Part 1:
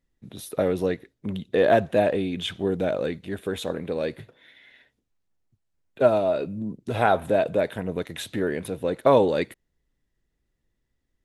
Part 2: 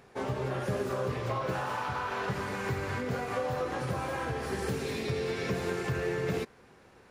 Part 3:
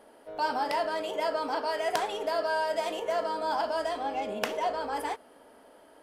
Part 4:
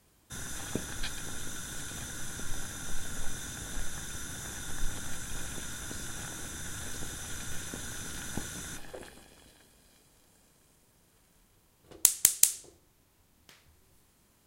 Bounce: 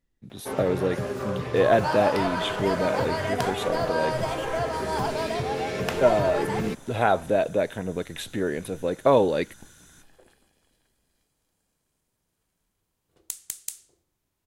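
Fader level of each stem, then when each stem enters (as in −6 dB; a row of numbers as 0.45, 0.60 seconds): −1.0, +1.5, +0.5, −12.0 decibels; 0.00, 0.30, 1.45, 1.25 seconds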